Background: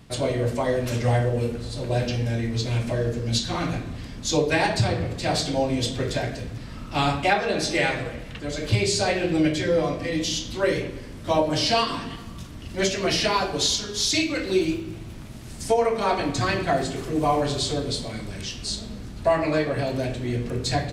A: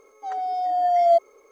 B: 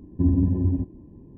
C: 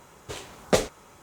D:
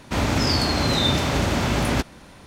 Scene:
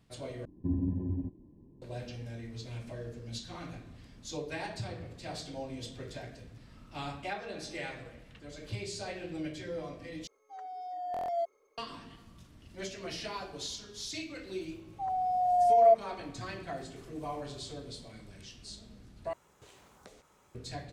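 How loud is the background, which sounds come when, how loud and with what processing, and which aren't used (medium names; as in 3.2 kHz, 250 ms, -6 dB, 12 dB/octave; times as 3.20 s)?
background -17 dB
0.45 s: replace with B -10 dB + peaking EQ 67 Hz -5 dB
10.27 s: replace with A -15.5 dB + buffer glitch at 0.85 s, samples 1024, times 6
14.76 s: add A -18 dB + high-order bell 780 Hz +14 dB 1.2 oct
19.33 s: replace with C -13 dB + compression 5:1, threshold -39 dBFS
not used: D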